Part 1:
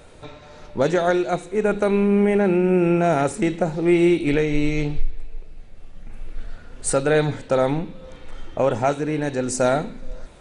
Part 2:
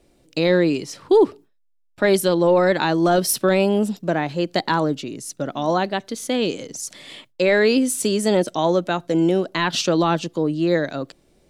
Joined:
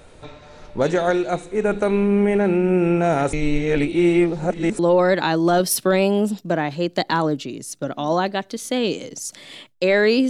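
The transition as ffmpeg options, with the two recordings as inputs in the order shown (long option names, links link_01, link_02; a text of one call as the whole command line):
ffmpeg -i cue0.wav -i cue1.wav -filter_complex "[0:a]apad=whole_dur=10.29,atrim=end=10.29,asplit=2[link_01][link_02];[link_01]atrim=end=3.332[link_03];[link_02]atrim=start=3.328:end=4.792,asetpts=PTS-STARTPTS,areverse[link_04];[1:a]atrim=start=2.368:end=7.87[link_05];[link_03][link_04]acrossfade=duration=0.004:curve1=hsin:curve2=hsin[link_06];[link_06][link_05]acrossfade=duration=0.004:curve1=hsin:curve2=hsin" out.wav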